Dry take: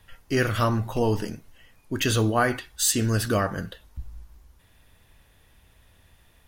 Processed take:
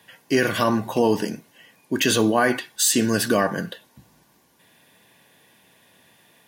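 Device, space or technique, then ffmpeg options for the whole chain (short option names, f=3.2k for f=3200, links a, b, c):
PA system with an anti-feedback notch: -af "highpass=f=160:w=0.5412,highpass=f=160:w=1.3066,asuperstop=centerf=1300:order=8:qfactor=6.8,alimiter=limit=-15dB:level=0:latency=1:release=23,volume=6dB"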